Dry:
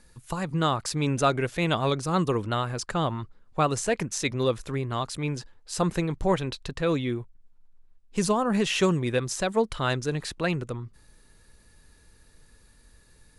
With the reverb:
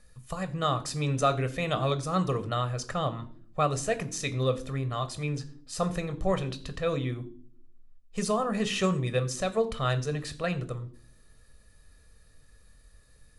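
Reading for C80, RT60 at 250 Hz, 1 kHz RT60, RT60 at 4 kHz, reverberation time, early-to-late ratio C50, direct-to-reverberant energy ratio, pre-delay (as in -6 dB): 19.0 dB, 0.90 s, 0.40 s, 0.40 s, 0.50 s, 16.5 dB, 9.5 dB, 15 ms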